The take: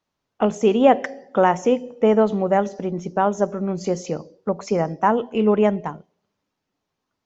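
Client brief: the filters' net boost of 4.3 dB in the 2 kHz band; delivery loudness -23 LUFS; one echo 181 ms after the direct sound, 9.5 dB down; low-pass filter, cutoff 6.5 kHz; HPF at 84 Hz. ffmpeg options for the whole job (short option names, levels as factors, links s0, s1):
-af "highpass=84,lowpass=6500,equalizer=f=2000:t=o:g=5.5,aecho=1:1:181:0.335,volume=0.708"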